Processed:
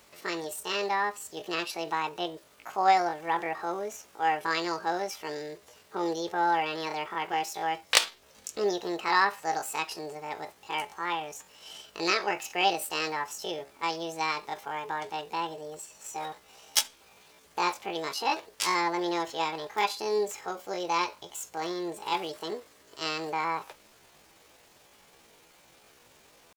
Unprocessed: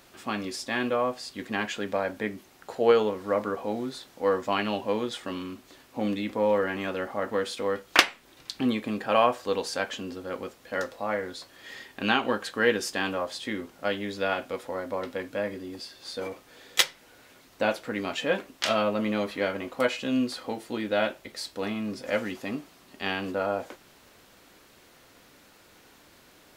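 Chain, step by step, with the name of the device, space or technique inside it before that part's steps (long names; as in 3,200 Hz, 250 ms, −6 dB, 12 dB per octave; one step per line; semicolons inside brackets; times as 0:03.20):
chipmunk voice (pitch shifter +8.5 semitones)
level −2 dB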